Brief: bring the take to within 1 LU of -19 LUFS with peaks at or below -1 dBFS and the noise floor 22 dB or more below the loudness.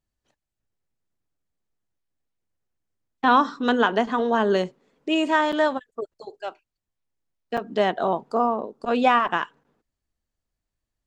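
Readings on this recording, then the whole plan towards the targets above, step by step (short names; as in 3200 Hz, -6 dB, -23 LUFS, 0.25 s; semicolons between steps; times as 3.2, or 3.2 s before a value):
dropouts 3; longest dropout 5.8 ms; loudness -22.5 LUFS; peak -5.5 dBFS; loudness target -19.0 LUFS
-> interpolate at 5.52/7.57/9.28, 5.8 ms; gain +3.5 dB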